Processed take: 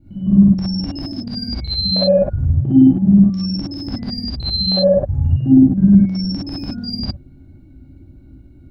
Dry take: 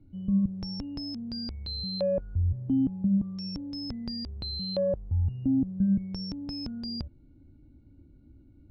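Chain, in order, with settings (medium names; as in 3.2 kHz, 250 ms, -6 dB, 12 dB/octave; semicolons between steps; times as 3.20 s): time reversed locally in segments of 53 ms; peaking EQ 1.8 kHz +2 dB; gated-style reverb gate 80 ms rising, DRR -7.5 dB; trim +5 dB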